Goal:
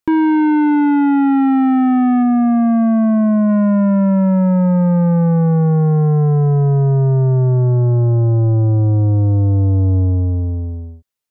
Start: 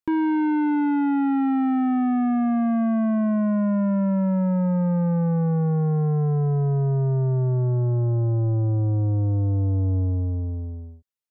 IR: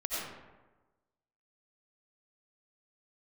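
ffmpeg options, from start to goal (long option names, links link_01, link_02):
-filter_complex "[0:a]asplit=3[link_01][link_02][link_03];[link_01]afade=type=out:start_time=2.22:duration=0.02[link_04];[link_02]highshelf=frequency=2400:gain=-11.5,afade=type=in:start_time=2.22:duration=0.02,afade=type=out:start_time=3.48:duration=0.02[link_05];[link_03]afade=type=in:start_time=3.48:duration=0.02[link_06];[link_04][link_05][link_06]amix=inputs=3:normalize=0,volume=8.5dB"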